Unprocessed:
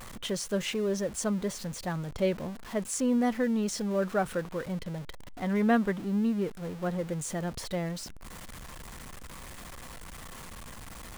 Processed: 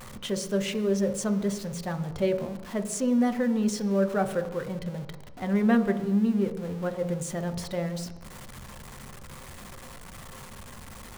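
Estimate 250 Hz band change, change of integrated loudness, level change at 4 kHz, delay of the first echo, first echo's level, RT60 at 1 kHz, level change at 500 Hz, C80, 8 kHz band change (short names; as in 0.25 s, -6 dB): +3.5 dB, +3.0 dB, 0.0 dB, none, none, 1.2 s, +3.0 dB, 13.0 dB, 0.0 dB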